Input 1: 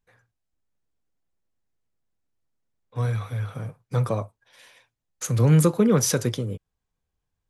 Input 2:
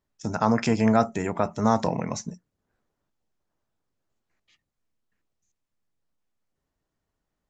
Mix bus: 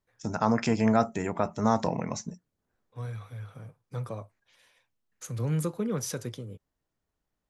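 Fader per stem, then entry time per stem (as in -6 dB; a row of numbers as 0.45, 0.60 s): -11.5, -3.0 dB; 0.00, 0.00 s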